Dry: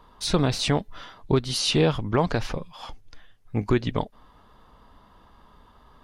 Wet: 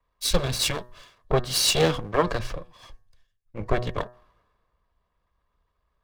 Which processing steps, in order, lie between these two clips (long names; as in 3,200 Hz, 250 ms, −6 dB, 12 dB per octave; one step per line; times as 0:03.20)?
lower of the sound and its delayed copy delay 1.8 ms
hum removal 122.6 Hz, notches 15
multiband upward and downward expander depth 70%